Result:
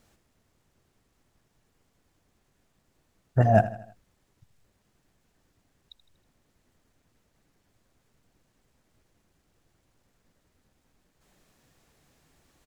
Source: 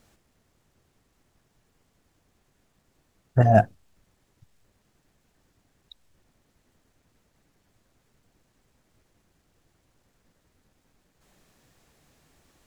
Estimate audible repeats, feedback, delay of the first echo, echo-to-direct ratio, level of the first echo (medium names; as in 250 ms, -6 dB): 4, 48%, 80 ms, -14.0 dB, -15.0 dB